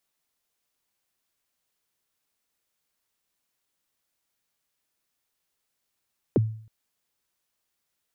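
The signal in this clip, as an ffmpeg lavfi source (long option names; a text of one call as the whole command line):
ffmpeg -f lavfi -i "aevalsrc='0.188*pow(10,-3*t/0.53)*sin(2*PI*(520*0.025/log(110/520)*(exp(log(110/520)*min(t,0.025)/0.025)-1)+110*max(t-0.025,0)))':duration=0.32:sample_rate=44100" out.wav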